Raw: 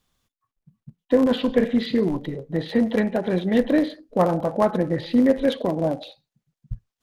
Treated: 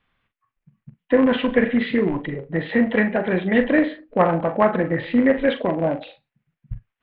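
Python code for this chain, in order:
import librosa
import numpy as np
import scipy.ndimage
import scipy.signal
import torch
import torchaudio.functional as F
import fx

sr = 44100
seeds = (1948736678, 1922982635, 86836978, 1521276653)

y = scipy.signal.sosfilt(scipy.signal.butter(4, 2800.0, 'lowpass', fs=sr, output='sos'), x)
y = fx.peak_eq(y, sr, hz=2100.0, db=10.0, octaves=1.8)
y = fx.doubler(y, sr, ms=42.0, db=-10.0)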